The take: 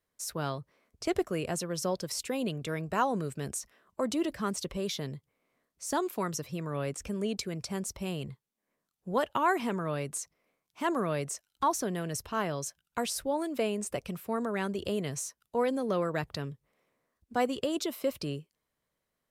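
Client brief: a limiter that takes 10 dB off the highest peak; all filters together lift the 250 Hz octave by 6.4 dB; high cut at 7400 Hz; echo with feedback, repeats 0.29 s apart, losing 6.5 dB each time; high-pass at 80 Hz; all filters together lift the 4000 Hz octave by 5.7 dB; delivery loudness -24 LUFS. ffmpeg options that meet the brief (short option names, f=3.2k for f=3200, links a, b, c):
-af "highpass=80,lowpass=7.4k,equalizer=f=250:t=o:g=8.5,equalizer=f=4k:t=o:g=8,alimiter=limit=-21.5dB:level=0:latency=1,aecho=1:1:290|580|870|1160|1450|1740:0.473|0.222|0.105|0.0491|0.0231|0.0109,volume=7.5dB"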